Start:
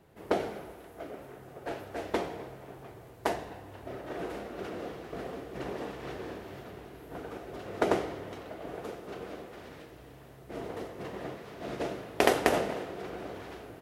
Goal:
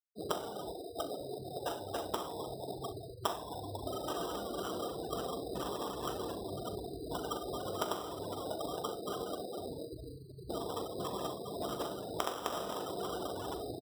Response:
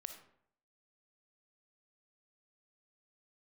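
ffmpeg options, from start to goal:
-filter_complex "[0:a]afftfilt=real='re*gte(hypot(re,im),0.0126)':imag='im*gte(hypot(re,im),0.0126)':win_size=1024:overlap=0.75,acompressor=threshold=0.00562:ratio=8,lowpass=f=1200:t=q:w=5,acrusher=samples=10:mix=1:aa=0.000001,asplit=2[s0][s1];[s1]aecho=0:1:41|65:0.211|0.168[s2];[s0][s2]amix=inputs=2:normalize=0,volume=2.24"

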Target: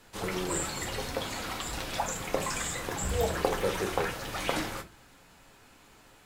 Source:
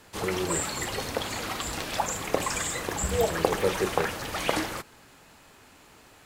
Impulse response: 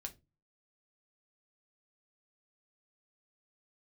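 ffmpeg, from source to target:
-filter_complex "[1:a]atrim=start_sample=2205,asetrate=40572,aresample=44100[s0];[0:a][s0]afir=irnorm=-1:irlink=0"

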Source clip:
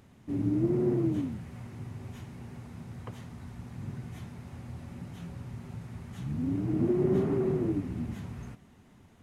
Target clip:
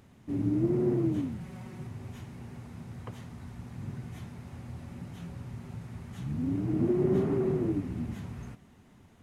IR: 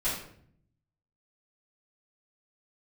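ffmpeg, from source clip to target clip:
-filter_complex "[0:a]asettb=1/sr,asplit=3[s0][s1][s2];[s0]atrim=end=1.404[s3];[s1]atrim=start=1.4:end=1.87,asetpts=PTS-STARTPTS,afade=t=in:d=0.004:c=qsin,afade=t=out:st=0.466:d=0.004:c=qsin,aecho=1:1:5.4:0.68,atrim=end_sample=20727[s4];[s2]atrim=start=1.866[s5];[s3][s4]acrossfade=d=0.004:c1=hsin:c2=qsin[s6];[s6][s5]acrossfade=d=0.004:c1=qsin:c2=hsin"

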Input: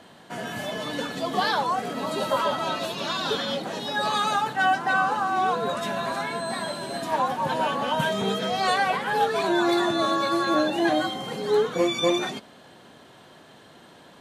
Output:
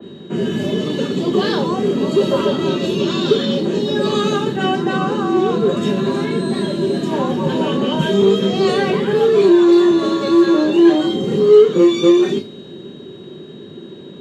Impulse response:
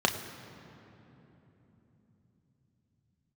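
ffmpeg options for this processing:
-filter_complex "[0:a]lowshelf=f=540:t=q:w=3:g=12,acrossover=split=420|4600[s0][s1][s2];[s0]acompressor=threshold=0.112:ratio=6[s3];[s3][s1][s2]amix=inputs=3:normalize=0,aeval=exprs='val(0)+0.00562*sin(2*PI*3800*n/s)':c=same,asplit=2[s4][s5];[s5]asoftclip=type=hard:threshold=0.15,volume=0.562[s6];[s4][s6]amix=inputs=2:normalize=0[s7];[1:a]atrim=start_sample=2205,atrim=end_sample=3969[s8];[s7][s8]afir=irnorm=-1:irlink=0,adynamicequalizer=threshold=0.0631:dfrequency=3000:dqfactor=0.7:tfrequency=3000:tqfactor=0.7:attack=5:release=100:ratio=0.375:range=3:mode=boostabove:tftype=highshelf,volume=0.224"

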